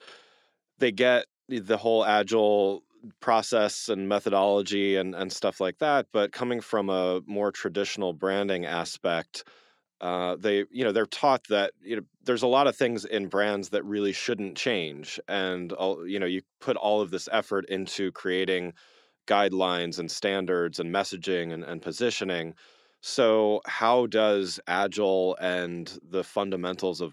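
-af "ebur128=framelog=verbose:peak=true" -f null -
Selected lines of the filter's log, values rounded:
Integrated loudness:
  I:         -27.0 LUFS
  Threshold: -37.3 LUFS
Loudness range:
  LRA:         4.1 LU
  Threshold: -47.3 LUFS
  LRA low:   -29.4 LUFS
  LRA high:  -25.3 LUFS
True peak:
  Peak:       -8.2 dBFS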